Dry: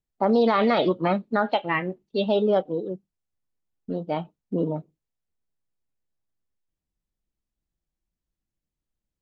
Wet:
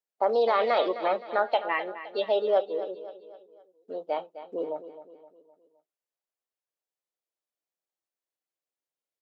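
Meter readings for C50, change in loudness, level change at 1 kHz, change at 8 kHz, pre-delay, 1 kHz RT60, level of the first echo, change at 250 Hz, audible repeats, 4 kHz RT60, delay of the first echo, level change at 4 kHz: none, -3.0 dB, -1.5 dB, n/a, none, none, -13.0 dB, -15.5 dB, 4, none, 0.259 s, -3.5 dB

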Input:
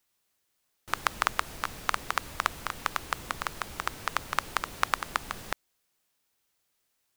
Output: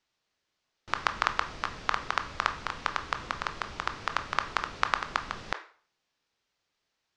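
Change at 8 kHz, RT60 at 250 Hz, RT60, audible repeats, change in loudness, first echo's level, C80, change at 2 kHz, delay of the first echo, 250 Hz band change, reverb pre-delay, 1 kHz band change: -7.5 dB, 0.45 s, 0.45 s, none, +0.5 dB, none, 18.0 dB, +0.5 dB, none, 0.0 dB, 17 ms, +0.5 dB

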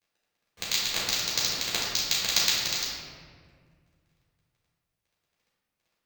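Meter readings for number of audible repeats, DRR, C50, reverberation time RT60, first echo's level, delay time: none, -7.5 dB, -1.0 dB, 1.9 s, none, none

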